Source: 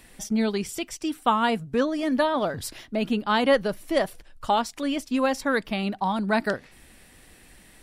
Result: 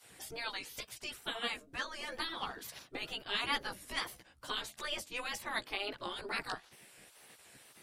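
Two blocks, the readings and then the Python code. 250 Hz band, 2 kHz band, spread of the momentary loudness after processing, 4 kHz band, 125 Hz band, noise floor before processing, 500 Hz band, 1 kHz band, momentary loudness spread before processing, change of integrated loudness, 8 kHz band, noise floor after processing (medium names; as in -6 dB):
-25.5 dB, -8.5 dB, 20 LU, -4.0 dB, -20.5 dB, -53 dBFS, -21.0 dB, -16.0 dB, 8 LU, -13.5 dB, -9.0 dB, -63 dBFS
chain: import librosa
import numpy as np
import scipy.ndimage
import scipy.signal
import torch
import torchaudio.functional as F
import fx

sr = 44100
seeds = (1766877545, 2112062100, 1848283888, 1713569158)

y = fx.chorus_voices(x, sr, voices=2, hz=0.41, base_ms=15, depth_ms=1.1, mix_pct=45)
y = fx.spec_gate(y, sr, threshold_db=-15, keep='weak')
y = fx.wow_flutter(y, sr, seeds[0], rate_hz=2.1, depth_cents=90.0)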